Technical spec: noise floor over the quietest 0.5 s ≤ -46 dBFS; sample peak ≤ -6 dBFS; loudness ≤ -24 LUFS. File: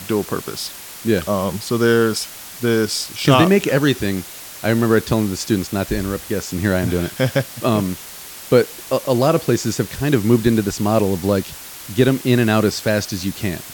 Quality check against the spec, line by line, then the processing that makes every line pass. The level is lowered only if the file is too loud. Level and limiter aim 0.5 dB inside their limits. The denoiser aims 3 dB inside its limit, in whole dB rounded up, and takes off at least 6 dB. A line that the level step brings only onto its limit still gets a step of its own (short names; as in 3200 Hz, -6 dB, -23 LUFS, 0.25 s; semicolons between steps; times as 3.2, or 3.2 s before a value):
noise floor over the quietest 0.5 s -36 dBFS: fail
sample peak -1.5 dBFS: fail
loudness -18.5 LUFS: fail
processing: denoiser 7 dB, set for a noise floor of -36 dBFS; gain -6 dB